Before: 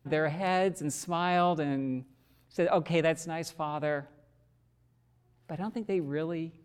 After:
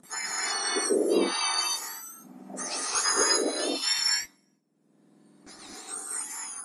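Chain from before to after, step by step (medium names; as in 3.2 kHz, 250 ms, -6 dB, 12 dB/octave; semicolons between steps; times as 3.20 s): spectrum inverted on a logarithmic axis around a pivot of 1.8 kHz; gate with hold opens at -60 dBFS; treble shelf 2.2 kHz -3 dB, from 2.95 s +5 dB, from 3.99 s -4 dB; upward compressor, threshold -44 dBFS; steep low-pass 10 kHz 36 dB/octave; peaking EQ 3.3 kHz -8.5 dB 2.3 oct; gated-style reverb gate 280 ms rising, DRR -4 dB; trim +6.5 dB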